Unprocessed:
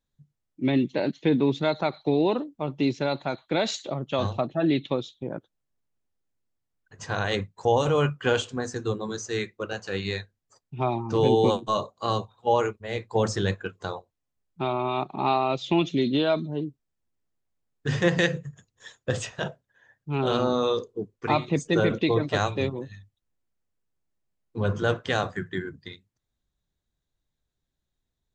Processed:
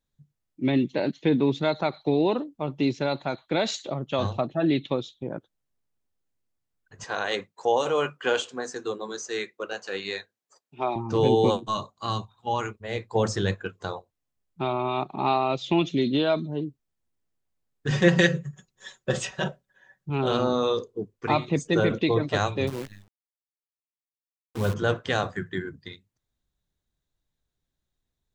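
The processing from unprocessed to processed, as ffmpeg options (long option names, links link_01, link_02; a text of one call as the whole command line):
ffmpeg -i in.wav -filter_complex "[0:a]asettb=1/sr,asplit=3[link_01][link_02][link_03];[link_01]atrim=end=7.044[link_04];[link_02]atrim=start=7.04:end=10.96,asetpts=PTS-STARTPTS,afade=type=in:duration=0.004:curve=qsin,afade=type=out:start_time=3.916:duration=0.004:curve=qsin,highpass=340[link_05];[link_03]atrim=start=10.956[link_06];[link_04][link_05]acrossfade=duration=0.004:curve1=hsin:curve2=qsin[link_07];[link_07][link_06]acrossfade=duration=0.004:curve1=qsin:curve2=hsin,asettb=1/sr,asplit=3[link_08][link_09][link_10];[link_08]atrim=end=11.684[link_11];[link_09]atrim=start=11.68:end=12.71,asetpts=PTS-STARTPTS,afade=type=in:duration=0.004:curve=qsin,afade=type=out:start_time=1.026:duration=0.004:curve=qsin,equalizer=frequency=500:width=1.6:gain=-11.5[link_12];[link_10]atrim=start=12.706[link_13];[link_11][link_12]acrossfade=duration=0.004:curve1=hsin:curve2=qsin[link_14];[link_14][link_13]acrossfade=duration=0.004:curve1=qsin:curve2=hsin,asettb=1/sr,asplit=3[link_15][link_16][link_17];[link_15]atrim=end=17.904[link_18];[link_16]atrim=start=17.9:end=20.1,asetpts=PTS-STARTPTS,afade=type=in:duration=0.004:curve=qsin,afade=type=out:start_time=2.196:duration=0.004:curve=qsin,aecho=1:1:5.3:0.84,atrim=end_sample=97020[link_19];[link_17]atrim=start=20.096[link_20];[link_18][link_19]acrossfade=duration=0.004:curve1=hsin:curve2=qsin[link_21];[link_21][link_20]acrossfade=duration=0.004:curve1=qsin:curve2=hsin,asettb=1/sr,asplit=3[link_22][link_23][link_24];[link_22]atrim=end=22.674[link_25];[link_23]atrim=start=22.67:end=24.74,asetpts=PTS-STARTPTS,afade=type=in:duration=0.004:curve=qsin,afade=type=out:start_time=2.066:duration=0.004:curve=qsin,acrusher=bits=7:dc=4:mix=0:aa=0.000001[link_26];[link_24]atrim=start=24.736[link_27];[link_25][link_26]acrossfade=duration=0.004:curve1=hsin:curve2=qsin[link_28];[link_28][link_27]acrossfade=duration=0.004:curve1=qsin:curve2=hsin" out.wav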